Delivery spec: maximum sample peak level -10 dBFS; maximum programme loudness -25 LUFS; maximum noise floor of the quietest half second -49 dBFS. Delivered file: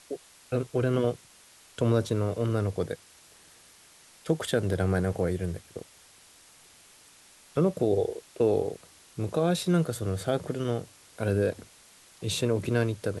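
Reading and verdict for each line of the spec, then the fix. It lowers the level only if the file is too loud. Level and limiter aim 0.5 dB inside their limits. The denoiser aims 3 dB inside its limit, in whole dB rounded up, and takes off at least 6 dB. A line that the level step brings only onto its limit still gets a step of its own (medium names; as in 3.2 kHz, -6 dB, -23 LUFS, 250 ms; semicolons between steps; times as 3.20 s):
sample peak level -11.0 dBFS: pass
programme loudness -28.5 LUFS: pass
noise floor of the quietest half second -56 dBFS: pass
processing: none needed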